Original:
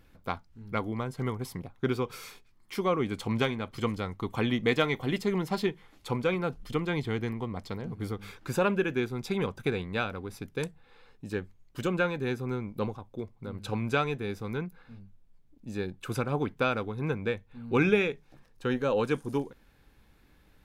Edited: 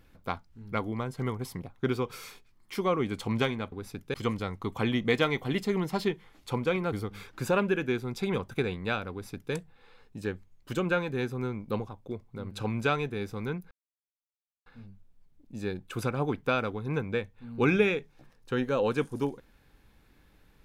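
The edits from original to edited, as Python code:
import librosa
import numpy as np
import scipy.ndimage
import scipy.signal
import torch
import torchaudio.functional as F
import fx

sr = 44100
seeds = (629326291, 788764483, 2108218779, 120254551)

y = fx.edit(x, sr, fx.cut(start_s=6.5, length_s=1.5),
    fx.duplicate(start_s=10.19, length_s=0.42, to_s=3.72),
    fx.insert_silence(at_s=14.79, length_s=0.95), tone=tone)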